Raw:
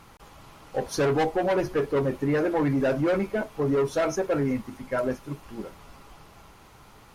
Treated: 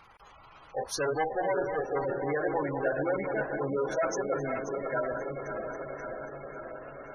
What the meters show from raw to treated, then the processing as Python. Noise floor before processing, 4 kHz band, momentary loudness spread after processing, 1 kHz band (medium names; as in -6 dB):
-52 dBFS, -5.5 dB, 11 LU, -1.0 dB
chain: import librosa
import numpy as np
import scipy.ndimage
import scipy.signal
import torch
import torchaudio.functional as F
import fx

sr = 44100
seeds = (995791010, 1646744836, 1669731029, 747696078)

y = fx.reverse_delay_fb(x, sr, ms=267, feedback_pct=80, wet_db=-6.5)
y = fx.peak_eq(y, sr, hz=240.0, db=-6.5, octaves=1.7)
y = fx.echo_diffused(y, sr, ms=932, feedback_pct=60, wet_db=-11.5)
y = fx.spec_gate(y, sr, threshold_db=-20, keep='strong')
y = fx.low_shelf(y, sr, hz=420.0, db=-9.5)